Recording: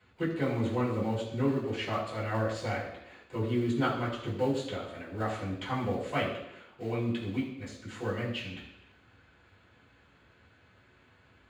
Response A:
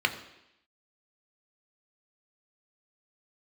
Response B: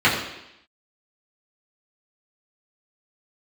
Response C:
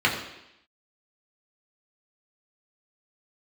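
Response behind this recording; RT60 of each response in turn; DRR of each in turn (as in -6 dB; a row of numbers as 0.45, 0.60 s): B; 0.85, 0.85, 0.85 s; 5.5, -9.0, -3.5 dB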